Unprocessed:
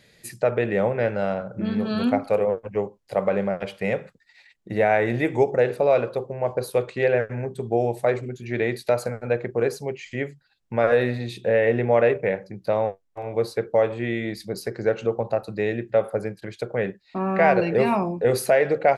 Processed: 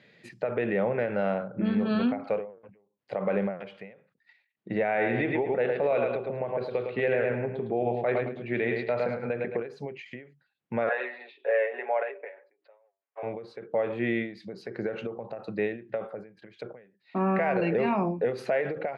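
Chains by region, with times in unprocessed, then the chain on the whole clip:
4.84–9.67 s: resonant high shelf 5.2 kHz -12.5 dB, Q 1.5 + feedback delay 108 ms, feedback 33%, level -7 dB + tape noise reduction on one side only decoder only
10.89–13.23 s: Bessel high-pass 690 Hz, order 8 + distance through air 350 m + comb 7.2 ms, depth 76%
whole clip: Chebyshev band-pass 170–2700 Hz, order 2; peak limiter -17.5 dBFS; endings held to a fixed fall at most 120 dB/s

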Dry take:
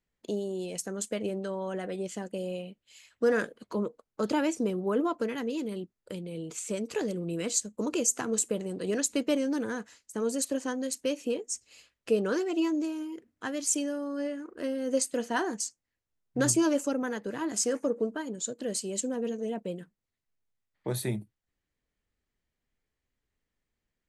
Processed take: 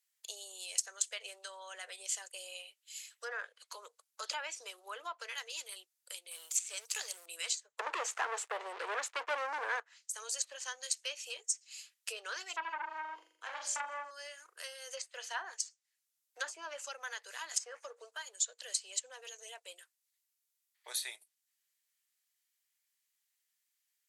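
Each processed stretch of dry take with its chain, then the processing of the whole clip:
6.31–7.26 s: companding laws mixed up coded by A + treble shelf 7.4 kHz +11 dB
7.79–9.80 s: peaking EQ 4.1 kHz -6.5 dB 1.4 oct + waveshaping leveller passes 5
12.56–14.11 s: tilt EQ -4.5 dB/octave + flutter echo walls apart 7.1 m, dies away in 0.69 s + transformer saturation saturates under 1 kHz
whole clip: Bessel high-pass 840 Hz, order 8; low-pass that closes with the level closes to 1.3 kHz, closed at -28.5 dBFS; differentiator; trim +11 dB

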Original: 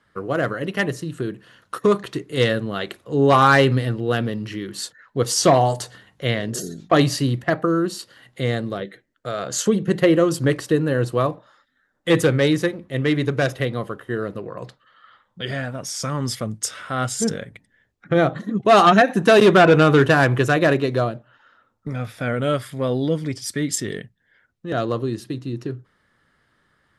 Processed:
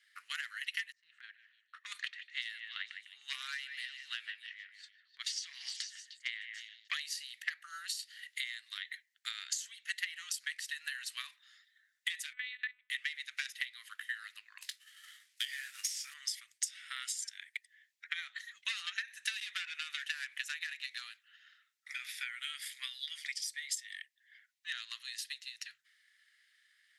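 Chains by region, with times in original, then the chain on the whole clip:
0.92–6.88 s: level-controlled noise filter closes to 480 Hz, open at -13 dBFS + compression, threshold -22 dBFS + repeats whose band climbs or falls 152 ms, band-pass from 2.2 kHz, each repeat 0.7 oct, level -9 dB
12.33–12.90 s: low-pass 1.3 kHz 6 dB/octave + monotone LPC vocoder at 8 kHz 250 Hz
14.61–16.14 s: CVSD coder 64 kbps + treble shelf 5.2 kHz +4 dB + doubling 21 ms -8 dB
whole clip: elliptic high-pass 1.9 kHz, stop band 70 dB; compression 10:1, threshold -40 dBFS; transient shaper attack +6 dB, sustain +2 dB; trim +1 dB

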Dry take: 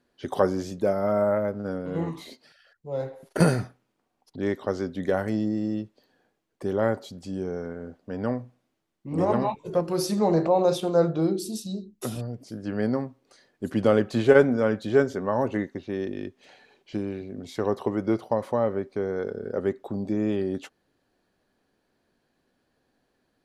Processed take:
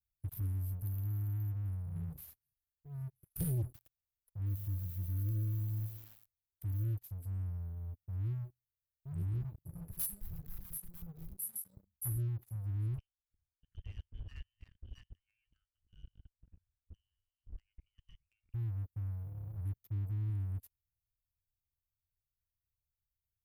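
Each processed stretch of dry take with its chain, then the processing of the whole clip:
3.63–6.84 s: dynamic bell 590 Hz, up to -8 dB, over -44 dBFS, Q 7.9 + bit-crushed delay 111 ms, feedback 55%, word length 8-bit, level -12.5 dB
9.90–11.77 s: high-pass 360 Hz 6 dB/octave + hard clipper -25 dBFS
12.98–18.54 s: dynamic bell 510 Hz, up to -6 dB, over -34 dBFS, Q 2 + phaser 1 Hz, delay 2.1 ms, feedback 31% + frequency inversion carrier 3.3 kHz
whole clip: inverse Chebyshev band-stop 260–6900 Hz, stop band 50 dB; amplifier tone stack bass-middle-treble 5-5-5; waveshaping leveller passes 3; trim +12 dB

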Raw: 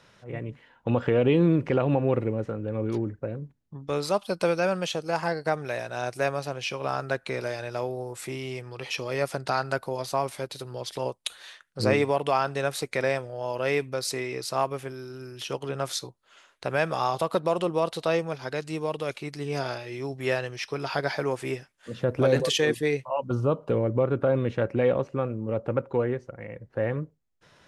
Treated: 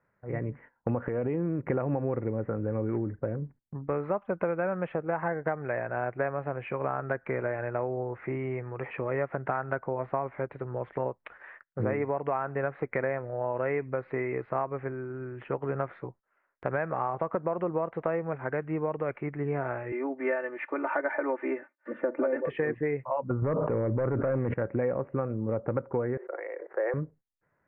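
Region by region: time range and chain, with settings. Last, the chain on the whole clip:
1.08–1.67 s: gate -26 dBFS, range -13 dB + compression 2.5:1, threshold -29 dBFS
19.92–22.46 s: high-pass 270 Hz 24 dB/octave + comb 3.4 ms, depth 81%
23.42–24.54 s: overload inside the chain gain 19 dB + level flattener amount 100%
26.17–26.94 s: steep high-pass 340 Hz 72 dB/octave + gate -59 dBFS, range -23 dB + decay stretcher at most 27 dB/s
whole clip: steep low-pass 2.1 kHz 48 dB/octave; gate -52 dBFS, range -18 dB; compression, threshold -28 dBFS; trim +2.5 dB

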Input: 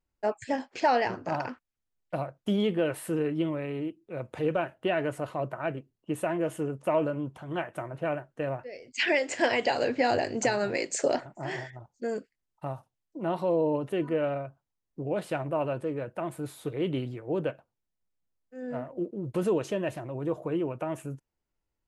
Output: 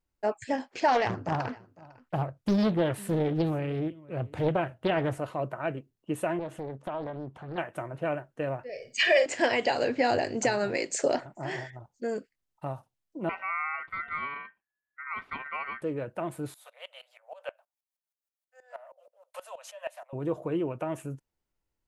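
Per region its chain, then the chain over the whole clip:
0.88–5.18 s: peaking EQ 97 Hz +11.5 dB 1.3 oct + delay 503 ms -22 dB + loudspeaker Doppler distortion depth 0.81 ms
6.39–7.58 s: low-pass 3.1 kHz 6 dB/octave + compression 2.5:1, threshold -34 dBFS + loudspeaker Doppler distortion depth 0.59 ms
8.69–9.26 s: comb 1.7 ms, depth 89% + flutter echo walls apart 8.8 m, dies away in 0.29 s
13.29–15.82 s: ring modulator 1.7 kHz + distance through air 480 m
16.54–20.13 s: steep high-pass 550 Hz 96 dB/octave + treble shelf 7.6 kHz +9 dB + sawtooth tremolo in dB swelling 6.3 Hz, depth 18 dB
whole clip: none

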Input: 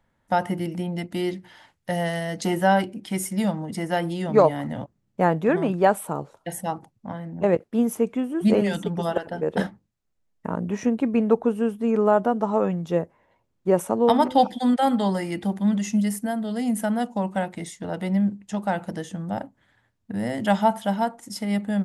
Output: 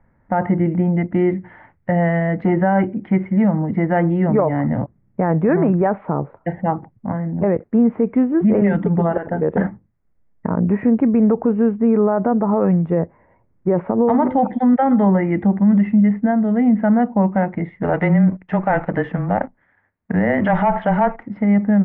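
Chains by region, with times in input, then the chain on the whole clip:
17.83–21.23 s: RIAA curve recording + waveshaping leveller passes 2 + frequency shift -16 Hz
whole clip: elliptic low-pass 2.1 kHz, stop band 80 dB; bass shelf 320 Hz +8 dB; peak limiter -14.5 dBFS; trim +6.5 dB

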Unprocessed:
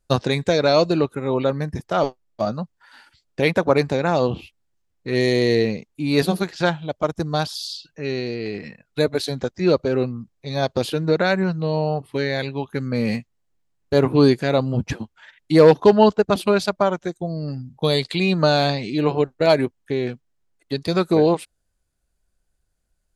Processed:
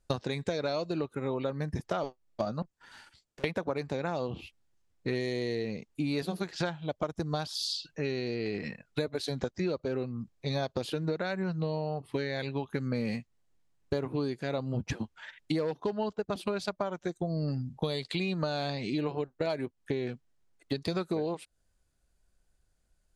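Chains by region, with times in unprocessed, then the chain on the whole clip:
2.62–3.44 s: peaking EQ 8 kHz +4.5 dB 0.86 oct + compression 2:1, threshold -38 dBFS + valve stage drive 46 dB, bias 0.7
whole clip: low-pass 11 kHz; compression 16:1, threshold -28 dBFS

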